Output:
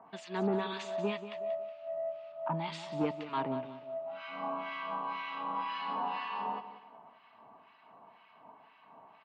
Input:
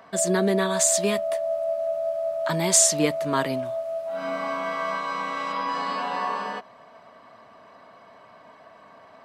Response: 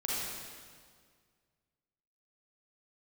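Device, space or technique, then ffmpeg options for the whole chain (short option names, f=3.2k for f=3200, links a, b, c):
guitar amplifier with harmonic tremolo: -filter_complex "[0:a]asettb=1/sr,asplit=3[a][b][c];[a]atrim=end=2.324[d];[b]atrim=start=2.32:end=3.01,asetpts=PTS-STARTPTS,afade=t=in:d=0.004:c=qsin,afade=t=out:st=0.686:d=0.004:c=qsin,equalizer=f=400:t=o:w=0.67:g=-8,equalizer=f=2.5k:t=o:w=0.67:g=-6,equalizer=f=6.3k:t=o:w=0.67:g=-12[e];[c]atrim=start=3.006[f];[d][e]acrossfade=d=0.004:c1=hsin:c2=qsin[g];[g][f]acrossfade=d=0.004:c1=qsin:c2=hsin,acrossover=split=1300[h][i];[h]aeval=exprs='val(0)*(1-1/2+1/2*cos(2*PI*2*n/s))':c=same[j];[i]aeval=exprs='val(0)*(1-1/2-1/2*cos(2*PI*2*n/s))':c=same[k];[j][k]amix=inputs=2:normalize=0,asoftclip=type=tanh:threshold=-16.5dB,highpass=100,equalizer=f=100:t=q:w=4:g=-4,equalizer=f=560:t=q:w=4:g=-9,equalizer=f=870:t=q:w=4:g=10,equalizer=f=1.7k:t=q:w=4:g=-4,equalizer=f=2.7k:t=q:w=4:g=8,lowpass=f=3.6k:w=0.5412,lowpass=f=3.6k:w=1.3066,aecho=1:1:184|368|552:0.251|0.0829|0.0274,volume=-5dB"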